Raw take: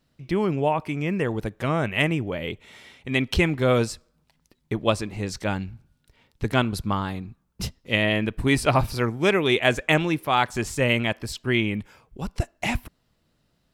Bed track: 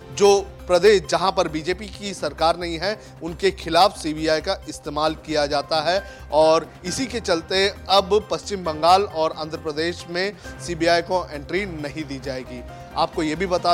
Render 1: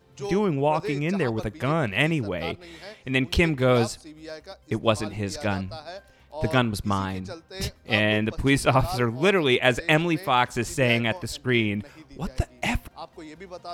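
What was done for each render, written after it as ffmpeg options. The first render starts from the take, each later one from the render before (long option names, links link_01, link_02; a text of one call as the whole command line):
ffmpeg -i in.wav -i bed.wav -filter_complex "[1:a]volume=-18.5dB[link_01];[0:a][link_01]amix=inputs=2:normalize=0" out.wav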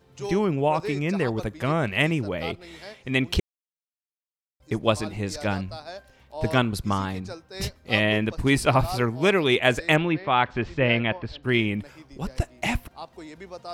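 ffmpeg -i in.wav -filter_complex "[0:a]asettb=1/sr,asplit=3[link_01][link_02][link_03];[link_01]atrim=end=9.964[link_04];[link_02]atrim=start=9.96:end=11.43,asetpts=PTS-STARTPTS,afade=type=in:duration=0.004:curve=qsin,afade=type=out:start_time=1.466:duration=0.004:curve=qsin,lowpass=frequency=3500:width=0.5412,lowpass=frequency=3500:width=1.3066[link_05];[link_03]atrim=start=11.426[link_06];[link_04][link_05]acrossfade=duration=0.004:curve1=hsin:curve2=qsin[link_07];[link_07][link_06]acrossfade=duration=0.004:curve1=qsin:curve2=hsin,asplit=3[link_08][link_09][link_10];[link_08]atrim=end=3.4,asetpts=PTS-STARTPTS,afade=type=out:start_time=3.396:duration=0.004:curve=hsin[link_11];[link_09]atrim=start=3.4:end=4.6,asetpts=PTS-STARTPTS,volume=0[link_12];[link_10]atrim=start=4.6,asetpts=PTS-STARTPTS,afade=type=in:duration=0.004:curve=hsin[link_13];[link_11][link_12][link_13]concat=n=3:v=0:a=1" out.wav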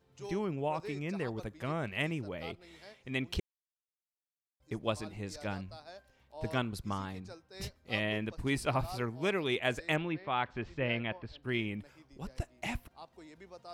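ffmpeg -i in.wav -af "volume=-11.5dB" out.wav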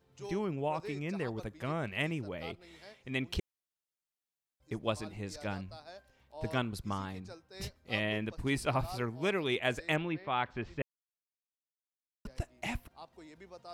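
ffmpeg -i in.wav -filter_complex "[0:a]asplit=3[link_01][link_02][link_03];[link_01]atrim=end=10.82,asetpts=PTS-STARTPTS,afade=type=out:start_time=10.816:duration=0.004:curve=hsin[link_04];[link_02]atrim=start=10.82:end=12.25,asetpts=PTS-STARTPTS,volume=0[link_05];[link_03]atrim=start=12.25,asetpts=PTS-STARTPTS,afade=type=in:duration=0.004:curve=hsin[link_06];[link_04][link_05][link_06]concat=n=3:v=0:a=1" out.wav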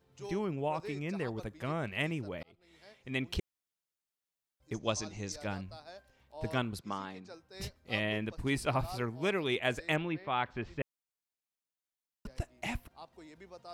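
ffmpeg -i in.wav -filter_complex "[0:a]asettb=1/sr,asplit=3[link_01][link_02][link_03];[link_01]atrim=end=4.744[link_04];[link_02]atrim=start=4.74:end=5.32,asetpts=PTS-STARTPTS,afade=type=in:duration=0.004:curve=qsin,afade=type=out:start_time=0.576:duration=0.004:curve=qsin,lowpass=frequency=6200:width_type=q:width=9.1[link_05];[link_03]atrim=start=5.316[link_06];[link_04][link_05]acrossfade=duration=0.004:curve1=hsin:curve2=qsin[link_07];[link_07][link_06]acrossfade=duration=0.004:curve1=qsin:curve2=hsin,asettb=1/sr,asplit=3[link_08][link_09][link_10];[link_08]atrim=end=6.794[link_11];[link_09]atrim=start=6.79:end=7.34,asetpts=PTS-STARTPTS,afade=type=in:duration=0.004:curve=qsin,afade=type=out:start_time=0.546:duration=0.004:curve=qsin,highpass=220,lowpass=6500[link_12];[link_10]atrim=start=7.336[link_13];[link_11][link_12]acrossfade=duration=0.004:curve1=hsin:curve2=qsin[link_14];[link_14][link_13]acrossfade=duration=0.004:curve1=qsin:curve2=hsin,asplit=2[link_15][link_16];[link_15]atrim=end=2.43,asetpts=PTS-STARTPTS,afade=type=out:start_time=2.426:duration=0.004:curve=hsin[link_17];[link_16]atrim=start=2.43,asetpts=PTS-STARTPTS,afade=type=in:duration=0.7[link_18];[link_17][link_18]concat=n=2:v=0:a=1" out.wav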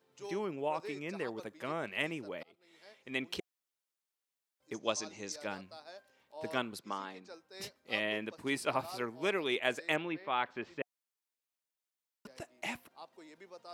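ffmpeg -i in.wav -af "highpass=280,bandreject=frequency=720:width=18" out.wav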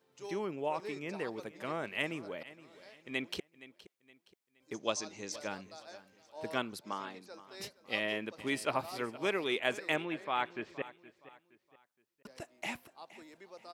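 ffmpeg -i in.wav -af "aecho=1:1:469|938|1407:0.133|0.048|0.0173" out.wav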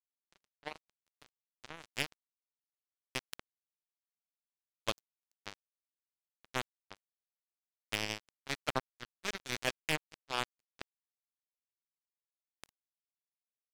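ffmpeg -i in.wav -af "acrusher=bits=3:mix=0:aa=0.5" out.wav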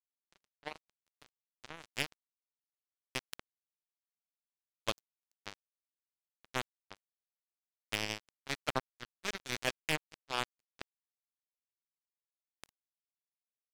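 ffmpeg -i in.wav -af anull out.wav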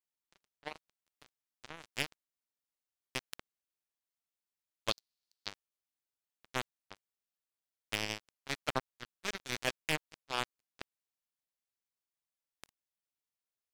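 ffmpeg -i in.wav -filter_complex "[0:a]asettb=1/sr,asplit=3[link_01][link_02][link_03];[link_01]atrim=end=4.914[link_04];[link_02]atrim=start=4.91:end=5.48,asetpts=PTS-STARTPTS,afade=type=in:duration=0.004:curve=qsin,afade=type=out:start_time=0.566:duration=0.004:curve=qsin,equalizer=frequency=4400:width_type=o:width=0.77:gain=15[link_05];[link_03]atrim=start=5.476[link_06];[link_04][link_05]acrossfade=duration=0.004:curve1=hsin:curve2=qsin[link_07];[link_07][link_06]acrossfade=duration=0.004:curve1=qsin:curve2=hsin" out.wav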